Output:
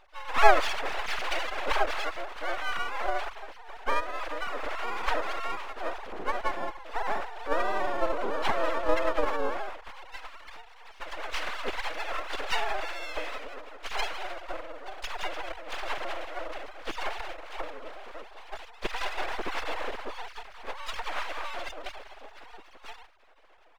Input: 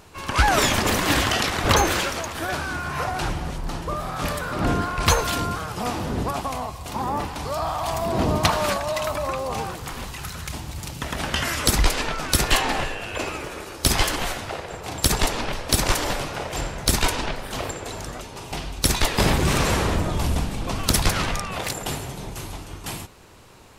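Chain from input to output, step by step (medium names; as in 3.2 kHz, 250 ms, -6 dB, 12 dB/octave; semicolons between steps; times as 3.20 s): formants replaced by sine waves; half-wave rectifier; harmony voices -12 st -9 dB, -4 st -2 dB, +5 st -10 dB; trim -7 dB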